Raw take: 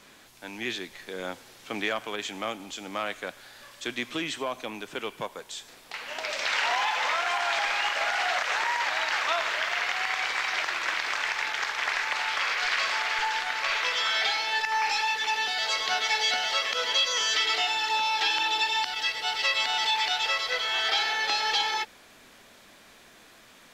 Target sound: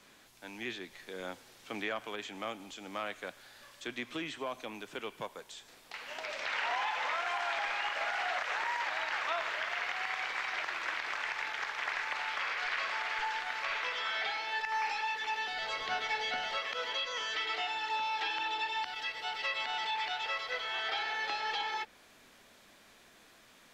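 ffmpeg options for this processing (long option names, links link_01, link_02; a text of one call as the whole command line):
ffmpeg -i in.wav -filter_complex "[0:a]acrossover=split=100|3100[link_01][link_02][link_03];[link_03]acompressor=threshold=-43dB:ratio=6[link_04];[link_01][link_02][link_04]amix=inputs=3:normalize=0,asettb=1/sr,asplit=3[link_05][link_06][link_07];[link_05]atrim=end=15.514[link_08];[link_06]atrim=start=15.51:end=16.58,asetpts=PTS-STARTPTS,afade=type=in:duration=0.004:curve=qsin,afade=type=out:start_time=1.066:duration=0.004:curve=qsin,lowshelf=frequency=220:gain=11[link_09];[link_07]atrim=start=16.576[link_10];[link_08][link_09]acrossfade=duration=0.004:curve1=hsin:curve2=qsin[link_11];[link_11][link_10]acrossfade=duration=0.004:curve1=qsin:curve2=hsin,volume=-6.5dB" out.wav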